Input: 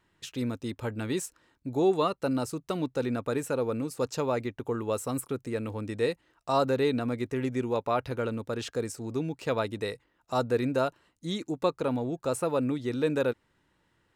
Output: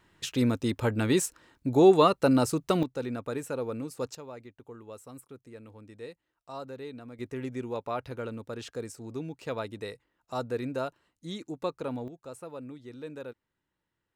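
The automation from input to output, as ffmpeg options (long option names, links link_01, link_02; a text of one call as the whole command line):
ffmpeg -i in.wav -af "asetnsamples=nb_out_samples=441:pad=0,asendcmd='2.83 volume volume -4dB;4.15 volume volume -15dB;7.19 volume volume -5.5dB;12.08 volume volume -14dB',volume=6dB" out.wav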